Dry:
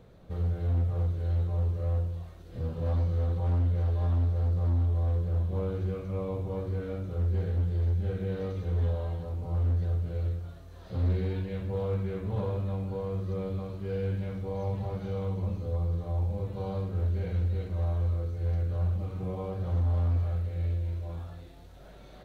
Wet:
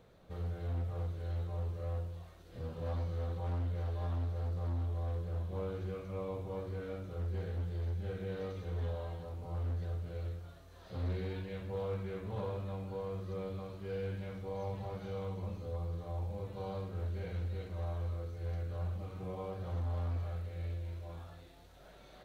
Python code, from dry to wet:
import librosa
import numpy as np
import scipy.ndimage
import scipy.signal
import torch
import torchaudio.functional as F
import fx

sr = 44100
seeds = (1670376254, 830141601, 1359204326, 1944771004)

y = fx.low_shelf(x, sr, hz=400.0, db=-8.0)
y = F.gain(torch.from_numpy(y), -2.0).numpy()